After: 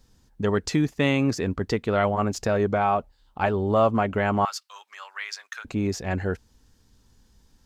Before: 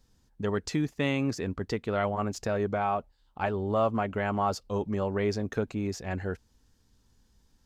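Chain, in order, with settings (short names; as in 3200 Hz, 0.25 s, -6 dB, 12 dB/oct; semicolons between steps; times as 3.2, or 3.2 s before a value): 4.45–5.65 HPF 1300 Hz 24 dB/oct; gain +6 dB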